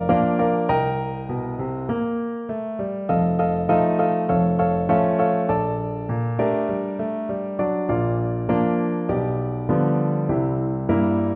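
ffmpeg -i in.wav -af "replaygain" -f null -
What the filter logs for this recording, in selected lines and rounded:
track_gain = +3.6 dB
track_peak = 0.348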